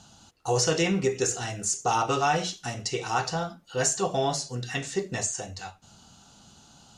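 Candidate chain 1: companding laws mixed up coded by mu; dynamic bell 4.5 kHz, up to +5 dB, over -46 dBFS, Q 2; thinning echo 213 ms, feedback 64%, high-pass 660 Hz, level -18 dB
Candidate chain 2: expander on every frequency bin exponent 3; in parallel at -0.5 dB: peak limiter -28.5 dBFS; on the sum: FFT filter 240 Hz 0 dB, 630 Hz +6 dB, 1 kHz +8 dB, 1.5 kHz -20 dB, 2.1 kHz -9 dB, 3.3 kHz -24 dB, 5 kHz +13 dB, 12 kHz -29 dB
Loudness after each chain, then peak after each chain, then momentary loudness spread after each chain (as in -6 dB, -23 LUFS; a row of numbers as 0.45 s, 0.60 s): -25.5 LUFS, -26.0 LUFS; -10.5 dBFS, -9.5 dBFS; 21 LU, 16 LU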